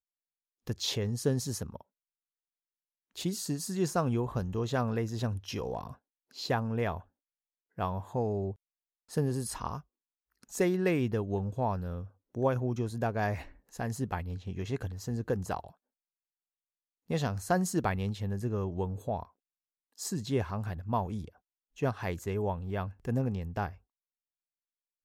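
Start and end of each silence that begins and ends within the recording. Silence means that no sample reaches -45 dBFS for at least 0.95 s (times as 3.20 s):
1.81–3.16 s
15.69–17.10 s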